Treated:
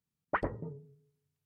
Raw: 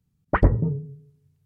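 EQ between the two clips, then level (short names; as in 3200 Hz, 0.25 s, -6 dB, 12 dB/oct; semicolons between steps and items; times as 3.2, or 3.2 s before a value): low shelf 120 Hz -9 dB; low shelf 290 Hz -11.5 dB; -7.0 dB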